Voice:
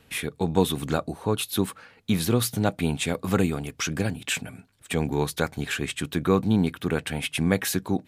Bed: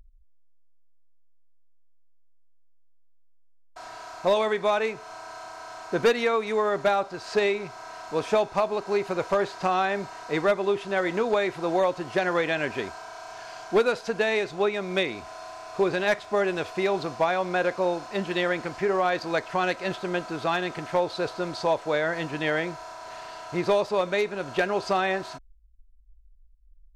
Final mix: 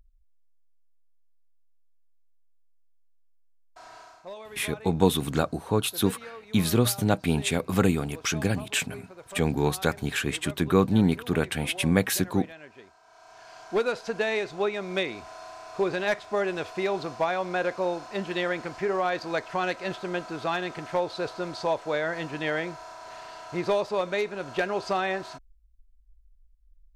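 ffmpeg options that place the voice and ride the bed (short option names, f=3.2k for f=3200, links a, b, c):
-filter_complex "[0:a]adelay=4450,volume=0.5dB[a];[1:a]volume=10.5dB,afade=t=out:st=3.98:d=0.27:silence=0.223872,afade=t=in:st=13.01:d=0.98:silence=0.149624[b];[a][b]amix=inputs=2:normalize=0"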